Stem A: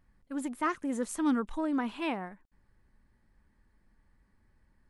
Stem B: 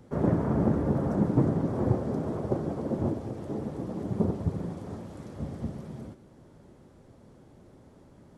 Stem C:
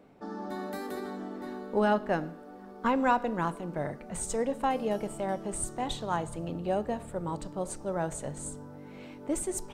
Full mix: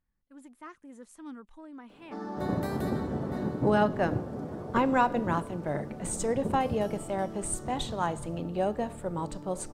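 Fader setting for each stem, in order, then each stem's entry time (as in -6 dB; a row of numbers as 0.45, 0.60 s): -15.5, -7.0, +1.0 dB; 0.00, 2.25, 1.90 s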